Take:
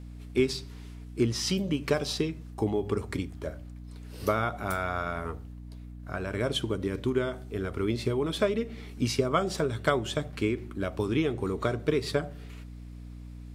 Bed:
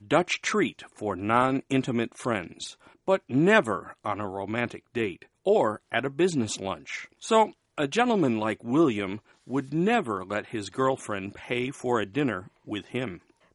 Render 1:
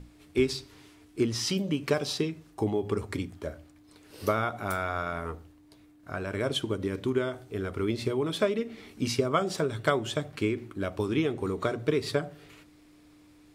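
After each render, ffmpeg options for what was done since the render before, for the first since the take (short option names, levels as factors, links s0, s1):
-af "bandreject=f=60:t=h:w=6,bandreject=f=120:t=h:w=6,bandreject=f=180:t=h:w=6,bandreject=f=240:t=h:w=6"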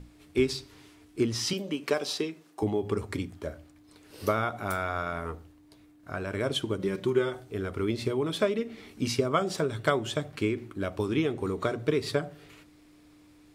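-filter_complex "[0:a]asettb=1/sr,asplit=3[s0][s1][s2];[s0]atrim=end=1.534[s3];[s1]atrim=start=1.53:end=2.63,asetpts=PTS-STARTPTS,afade=t=in:d=0.004:c=qsin,afade=t=out:st=1.096:d=0.004:c=qsin,highpass=280[s4];[s2]atrim=start=2.626[s5];[s3][s4]acrossfade=d=0.004:c1=hsin:c2=qsin[s6];[s6][s5]acrossfade=d=0.004:c1=qsin:c2=hsin,asettb=1/sr,asplit=3[s7][s8][s9];[s7]atrim=end=6.794[s10];[s8]atrim=start=6.79:end=7.4,asetpts=PTS-STARTPTS,afade=t=in:d=0.004:c=qsin,afade=t=out:st=0.606:d=0.004:c=qsin,aecho=1:1:5.5:0.65,atrim=end_sample=26901[s11];[s9]atrim=start=7.396[s12];[s10][s11]acrossfade=d=0.004:c1=hsin:c2=qsin[s13];[s13][s12]acrossfade=d=0.004:c1=qsin:c2=hsin"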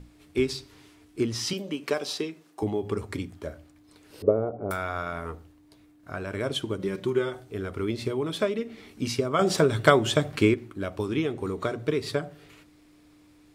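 -filter_complex "[0:a]asettb=1/sr,asplit=3[s0][s1][s2];[s0]atrim=end=4.224[s3];[s1]atrim=start=4.22:end=4.71,asetpts=PTS-STARTPTS,afade=t=in:d=0.004:c=qsin,afade=t=out:st=0.486:d=0.004:c=qsin,lowpass=f=480:t=q:w=3.9[s4];[s2]atrim=start=4.706[s5];[s3][s4]acrossfade=d=0.004:c1=hsin:c2=qsin[s6];[s6][s5]acrossfade=d=0.004:c1=qsin:c2=hsin,asplit=3[s7][s8][s9];[s7]atrim=end=9.392[s10];[s8]atrim=start=9.388:end=10.542,asetpts=PTS-STARTPTS,volume=2.37[s11];[s9]atrim=start=10.538[s12];[s10][s11]acrossfade=d=0.004:c1=hsin:c2=hsin[s13];[s13][s12]acrossfade=d=0.004:c1=hsin:c2=hsin"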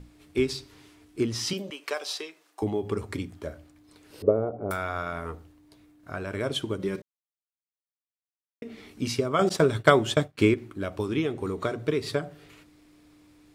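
-filter_complex "[0:a]asettb=1/sr,asplit=3[s0][s1][s2];[s0]atrim=end=1.704[s3];[s1]atrim=start=1.7:end=2.62,asetpts=PTS-STARTPTS,afade=t=in:d=0.004:c=qsin,afade=t=out:st=0.916:d=0.004:c=qsin,highpass=630[s4];[s2]atrim=start=2.616[s5];[s3][s4]acrossfade=d=0.004:c1=hsin:c2=qsin[s6];[s6][s5]acrossfade=d=0.004:c1=qsin:c2=hsin,asettb=1/sr,asplit=3[s7][s8][s9];[s7]atrim=end=9.494[s10];[s8]atrim=start=9.49:end=10.39,asetpts=PTS-STARTPTS,afade=t=in:d=0.004:c=qsin,afade=t=out:st=0.896:d=0.004:c=qsin,agate=range=0.0224:threshold=0.0562:ratio=3:release=100:detection=peak[s11];[s9]atrim=start=10.386[s12];[s10][s11]acrossfade=d=0.004:c1=hsin:c2=qsin[s13];[s13][s12]acrossfade=d=0.004:c1=qsin:c2=hsin,asplit=3[s14][s15][s16];[s14]atrim=end=7.02,asetpts=PTS-STARTPTS,afade=t=out:st=7.016:d=0.004:c=hsin[s17];[s15]atrim=start=7.02:end=8.62,asetpts=PTS-STARTPTS,volume=0[s18];[s16]atrim=start=8.62,asetpts=PTS-STARTPTS,afade=t=in:d=0.004:c=hsin[s19];[s17][s18][s19]concat=n=3:v=0:a=1"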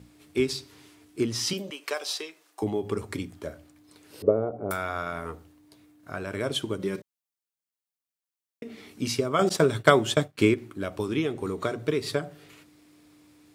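-af "highpass=90,highshelf=f=5900:g=5"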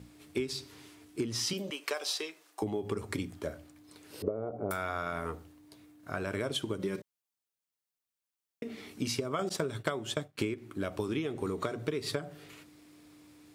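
-af "acompressor=threshold=0.0355:ratio=12"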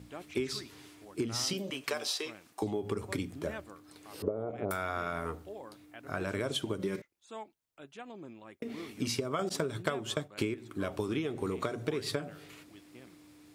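-filter_complex "[1:a]volume=0.0668[s0];[0:a][s0]amix=inputs=2:normalize=0"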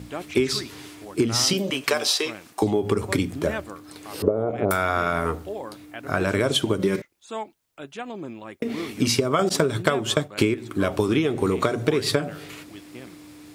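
-af "volume=3.98,alimiter=limit=0.891:level=0:latency=1"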